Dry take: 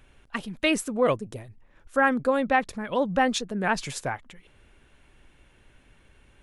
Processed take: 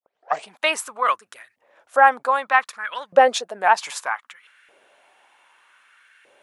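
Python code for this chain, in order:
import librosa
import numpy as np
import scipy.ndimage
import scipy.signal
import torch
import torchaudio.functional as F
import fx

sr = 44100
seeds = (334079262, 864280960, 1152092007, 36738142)

y = fx.tape_start_head(x, sr, length_s=0.5)
y = fx.filter_lfo_highpass(y, sr, shape='saw_up', hz=0.64, low_hz=520.0, high_hz=1700.0, q=3.0)
y = y * 10.0 ** (3.5 / 20.0)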